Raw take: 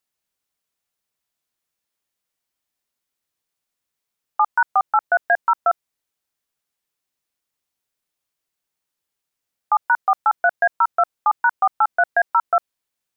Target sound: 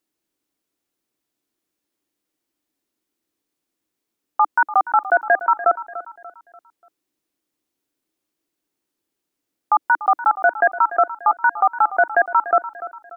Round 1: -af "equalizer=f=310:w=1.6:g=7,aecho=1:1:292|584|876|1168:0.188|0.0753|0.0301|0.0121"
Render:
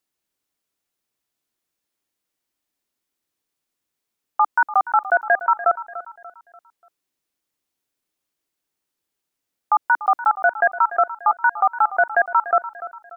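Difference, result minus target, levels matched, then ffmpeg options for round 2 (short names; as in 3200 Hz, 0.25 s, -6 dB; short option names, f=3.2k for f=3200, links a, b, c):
250 Hz band -8.0 dB
-af "equalizer=f=310:w=1.6:g=18,aecho=1:1:292|584|876|1168:0.188|0.0753|0.0301|0.0121"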